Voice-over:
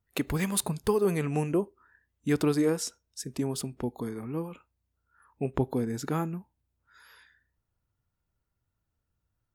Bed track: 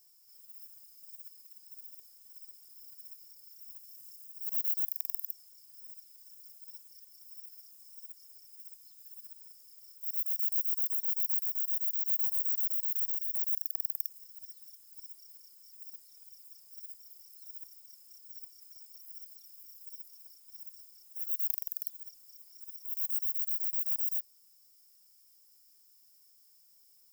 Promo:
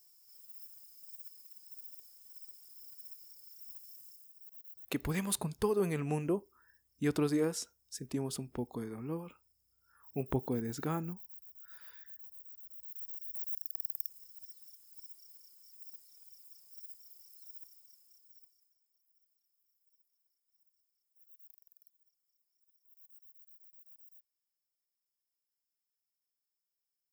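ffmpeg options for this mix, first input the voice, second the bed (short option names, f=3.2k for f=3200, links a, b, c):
-filter_complex "[0:a]adelay=4750,volume=-5.5dB[a];[1:a]volume=17.5dB,afade=t=out:st=3.89:d=0.62:silence=0.0944061,afade=t=in:st=12.68:d=1.43:silence=0.125893,afade=t=out:st=17.37:d=1.4:silence=0.0668344[b];[a][b]amix=inputs=2:normalize=0"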